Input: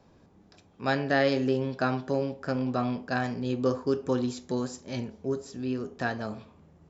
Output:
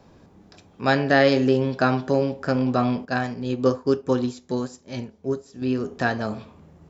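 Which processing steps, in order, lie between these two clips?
0:03.05–0:05.62: expander for the loud parts 1.5 to 1, over −47 dBFS
level +7 dB

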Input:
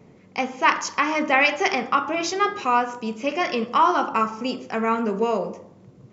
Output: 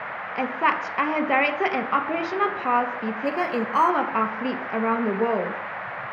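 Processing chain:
0:03.25–0:03.90: bad sample-rate conversion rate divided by 6×, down filtered, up hold
high-frequency loss of the air 380 metres
noise in a band 530–2,000 Hz −33 dBFS

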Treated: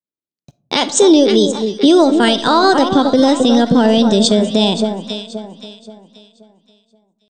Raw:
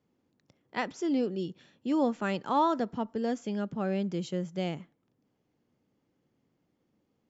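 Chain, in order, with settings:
notch filter 970 Hz, Q 8
noise gate −60 dBFS, range −51 dB
high-pass filter 66 Hz 12 dB per octave
high shelf with overshoot 2,400 Hz +6 dB, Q 3
downward compressor 5 to 1, threshold −30 dBFS, peak gain reduction 8 dB
transient designer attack +5 dB, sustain −8 dB
pitch shifter +2.5 semitones
delay that swaps between a low-pass and a high-pass 264 ms, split 1,300 Hz, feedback 58%, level −9 dB
convolution reverb RT60 0.60 s, pre-delay 5 ms, DRR 17.5 dB
boost into a limiter +26 dB
level −1 dB

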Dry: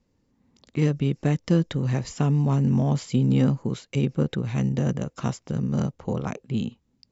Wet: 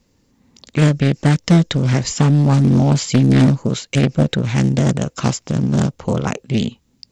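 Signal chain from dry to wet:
high-shelf EQ 2,400 Hz +8.5 dB
highs frequency-modulated by the lows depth 0.58 ms
level +8.5 dB

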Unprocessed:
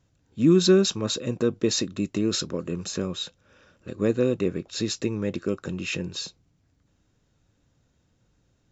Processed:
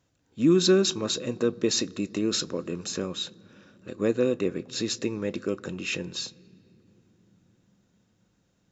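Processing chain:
low-shelf EQ 130 Hz −11.5 dB
on a send: convolution reverb RT60 3.6 s, pre-delay 3 ms, DRR 19.5 dB

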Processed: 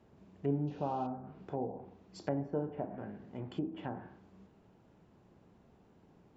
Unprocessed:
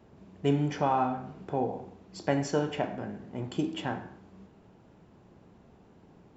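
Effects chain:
sound drawn into the spectrogram noise, 0:00.67–0:01.07, 2,400–6,900 Hz −31 dBFS
treble cut that deepens with the level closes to 750 Hz, closed at −27.5 dBFS
level −6.5 dB

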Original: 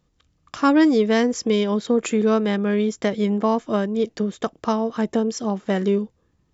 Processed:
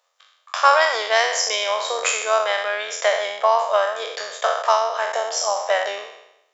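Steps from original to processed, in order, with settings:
peak hold with a decay on every bin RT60 0.86 s
elliptic high-pass filter 580 Hz, stop band 50 dB
amplitude modulation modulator 87 Hz, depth 20%
level +7.5 dB

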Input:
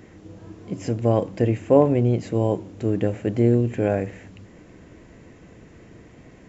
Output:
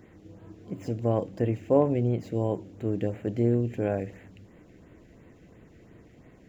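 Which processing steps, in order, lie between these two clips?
running median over 5 samples
auto-filter notch sine 2.9 Hz 950–5,900 Hz
level −6 dB

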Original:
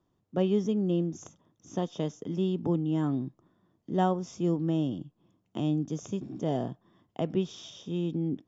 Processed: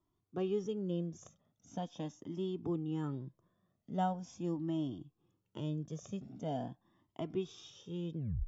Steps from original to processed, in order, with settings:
turntable brake at the end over 0.31 s
flanger whose copies keep moving one way rising 0.42 Hz
level −3.5 dB

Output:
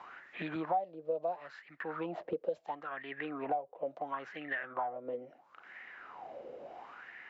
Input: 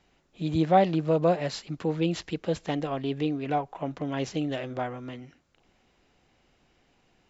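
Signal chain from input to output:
LFO wah 0.73 Hz 500–1,900 Hz, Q 8
multiband upward and downward compressor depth 100%
level +2 dB

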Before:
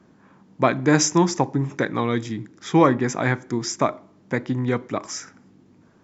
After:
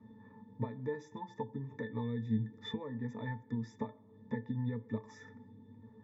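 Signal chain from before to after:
downward compressor 12 to 1, threshold −32 dBFS, peak gain reduction 21.5 dB
resonances in every octave A, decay 0.14 s
level +8.5 dB

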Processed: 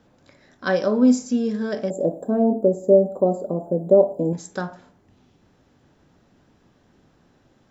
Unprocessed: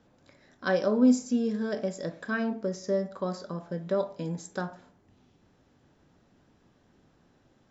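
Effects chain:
0:01.90–0:04.33: drawn EQ curve 130 Hz 0 dB, 310 Hz +9 dB, 750 Hz +9 dB, 1,100 Hz −11 dB, 1,800 Hz −27 dB, 3,600 Hz −23 dB, 5,700 Hz −27 dB, 8,600 Hz +15 dB
level +5 dB

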